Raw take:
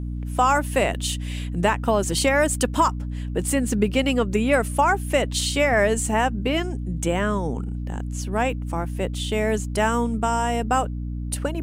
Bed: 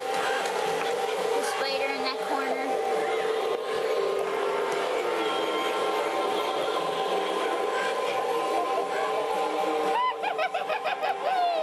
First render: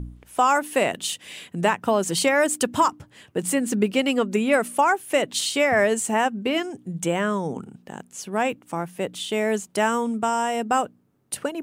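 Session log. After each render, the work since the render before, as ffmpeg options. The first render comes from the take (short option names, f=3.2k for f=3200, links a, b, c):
-af "bandreject=f=60:t=h:w=4,bandreject=f=120:t=h:w=4,bandreject=f=180:t=h:w=4,bandreject=f=240:t=h:w=4,bandreject=f=300:t=h:w=4"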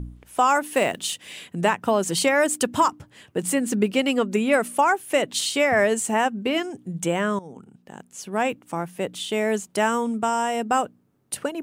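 -filter_complex "[0:a]asettb=1/sr,asplit=3[a][b][c];[a]atrim=end=0.714[d];[b]atrim=start=0.71:end=1.32,asetpts=PTS-STARTPTS,afade=t=in:d=0.004:c=qsin,afade=t=out:st=0.606:d=0.004:c=qsin,acrusher=bits=7:mode=log:mix=0:aa=0.000001[e];[c]atrim=start=1.316[f];[d][e]acrossfade=d=0.004:c1=hsin:c2=qsin[g];[g][f]acrossfade=d=0.004:c1=qsin:c2=hsin,asplit=2[h][i];[h]atrim=end=7.39,asetpts=PTS-STARTPTS,afade=t=out:st=7.386:d=0.004:c=hsin:silence=0.16788[j];[i]atrim=start=7.39,asetpts=PTS-STARTPTS,afade=t=in:d=1.03:silence=0.16788[k];[j][k]concat=n=2:v=0:a=1"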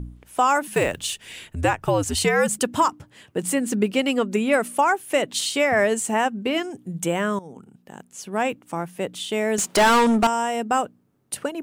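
-filter_complex "[0:a]asettb=1/sr,asplit=3[a][b][c];[a]atrim=end=0.674[d];[b]atrim=start=0.67:end=2.59,asetpts=PTS-STARTPTS,afade=t=in:d=0.004:c=qsin,afade=t=out:st=1.916:d=0.004:c=qsin,afreqshift=-89[e];[c]atrim=start=2.586[f];[d][e]acrossfade=d=0.004:c1=hsin:c2=qsin[g];[g][f]acrossfade=d=0.004:c1=qsin:c2=hsin,asettb=1/sr,asplit=3[h][i][j];[h]atrim=end=6.714[k];[i]atrim=start=6.71:end=8.05,asetpts=PTS-STARTPTS,afade=t=in:d=0.004:c=qsin,afade=t=out:st=1.336:d=0.004:c=qsin,equalizer=f=13k:w=1.5:g=7[l];[j]atrim=start=8.046[m];[k][l]acrossfade=d=0.004:c1=hsin:c2=qsin[n];[n][m]acrossfade=d=0.004:c1=qsin:c2=hsin,asettb=1/sr,asplit=3[o][p][q];[o]atrim=end=9.584[r];[p]atrim=start=9.58:end=10.27,asetpts=PTS-STARTPTS,afade=t=in:d=0.004:c=qsin,afade=t=out:st=0.686:d=0.004:c=qsin,asplit=2[s][t];[t]highpass=f=720:p=1,volume=27dB,asoftclip=type=tanh:threshold=-9.5dB[u];[s][u]amix=inputs=2:normalize=0,lowpass=f=5.5k:p=1,volume=-6dB[v];[q]atrim=start=10.266[w];[r][v]acrossfade=d=0.004:c1=hsin:c2=qsin[x];[x][w]acrossfade=d=0.004:c1=qsin:c2=hsin"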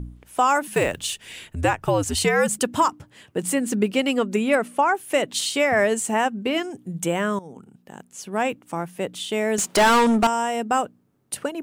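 -filter_complex "[0:a]asettb=1/sr,asplit=3[a][b][c];[a]atrim=end=4.554[d];[b]atrim=start=4.55:end=4.95,asetpts=PTS-STARTPTS,afade=t=in:d=0.004:c=qsin,afade=t=out:st=0.396:d=0.004:c=qsin,lowpass=f=2.8k:p=1[e];[c]atrim=start=4.946[f];[d][e]acrossfade=d=0.004:c1=hsin:c2=qsin[g];[g][f]acrossfade=d=0.004:c1=qsin:c2=hsin"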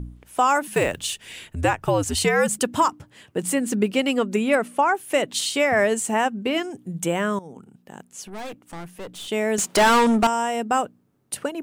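-filter_complex "[0:a]asettb=1/sr,asplit=3[a][b][c];[a]atrim=end=8.274[d];[b]atrim=start=8.27:end=9.28,asetpts=PTS-STARTPTS,afade=t=in:d=0.004:c=qsin,afade=t=out:st=1.006:d=0.004:c=qsin,aeval=exprs='(tanh(39.8*val(0)+0.45)-tanh(0.45))/39.8':c=same[e];[c]atrim=start=9.276[f];[d][e]acrossfade=d=0.004:c1=hsin:c2=qsin[g];[g][f]acrossfade=d=0.004:c1=qsin:c2=hsin"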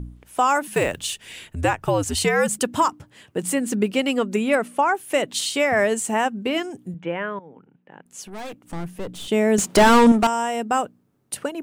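-filter_complex "[0:a]asettb=1/sr,asplit=3[a][b][c];[a]atrim=end=6.944[d];[b]atrim=start=6.94:end=8.06,asetpts=PTS-STARTPTS,afade=t=in:d=0.004:c=qsin,afade=t=out:st=1.116:d=0.004:c=qsin,highpass=180,equalizer=f=220:t=q:w=4:g=-10,equalizer=f=380:t=q:w=4:g=-5,equalizer=f=700:t=q:w=4:g=-6,equalizer=f=1.2k:t=q:w=4:g=-5,lowpass=f=2.6k:w=0.5412,lowpass=f=2.6k:w=1.3066[e];[c]atrim=start=8.056[f];[d][e]acrossfade=d=0.004:c1=hsin:c2=qsin[g];[g][f]acrossfade=d=0.004:c1=qsin:c2=hsin,asettb=1/sr,asplit=3[h][i][j];[h]atrim=end=8.644[k];[i]atrim=start=8.64:end=10.12,asetpts=PTS-STARTPTS,afade=t=in:d=0.004:c=qsin,afade=t=out:st=1.476:d=0.004:c=qsin,lowshelf=f=430:g=9[l];[j]atrim=start=10.116[m];[k][l]acrossfade=d=0.004:c1=hsin:c2=qsin[n];[n][m]acrossfade=d=0.004:c1=qsin:c2=hsin"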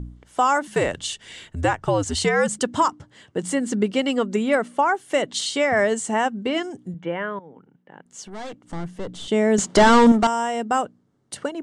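-af "lowpass=f=8.2k:w=0.5412,lowpass=f=8.2k:w=1.3066,bandreject=f=2.5k:w=6.8"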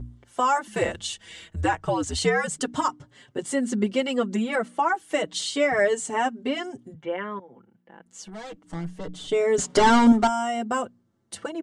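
-filter_complex "[0:a]asplit=2[a][b];[b]adelay=5.2,afreqshift=-0.29[c];[a][c]amix=inputs=2:normalize=1"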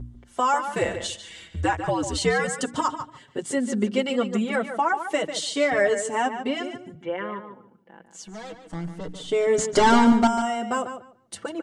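-filter_complex "[0:a]asplit=2[a][b];[b]adelay=146,lowpass=f=4.2k:p=1,volume=-9dB,asplit=2[c][d];[d]adelay=146,lowpass=f=4.2k:p=1,volume=0.18,asplit=2[e][f];[f]adelay=146,lowpass=f=4.2k:p=1,volume=0.18[g];[a][c][e][g]amix=inputs=4:normalize=0"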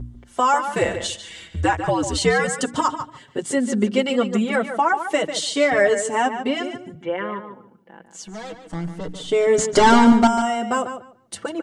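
-af "volume=4dB,alimiter=limit=-3dB:level=0:latency=1"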